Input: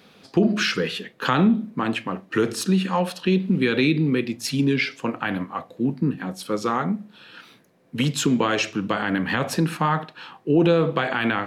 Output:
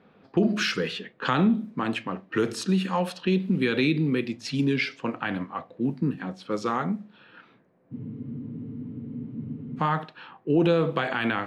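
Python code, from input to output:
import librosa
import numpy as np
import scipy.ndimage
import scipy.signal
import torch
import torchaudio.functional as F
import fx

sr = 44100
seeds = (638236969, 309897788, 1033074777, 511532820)

y = fx.env_lowpass(x, sr, base_hz=1500.0, full_db=-18.5)
y = fx.spec_freeze(y, sr, seeds[0], at_s=7.95, hold_s=1.84)
y = y * librosa.db_to_amplitude(-3.5)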